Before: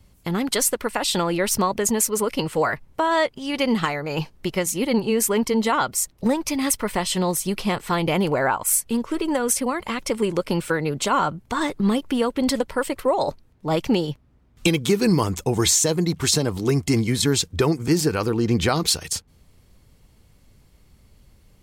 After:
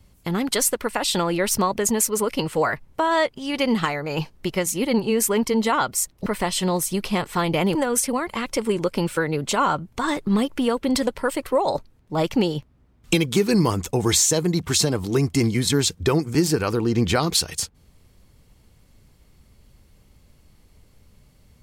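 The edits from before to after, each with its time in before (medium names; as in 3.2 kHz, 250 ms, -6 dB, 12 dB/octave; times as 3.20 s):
6.26–6.80 s: delete
8.29–9.28 s: delete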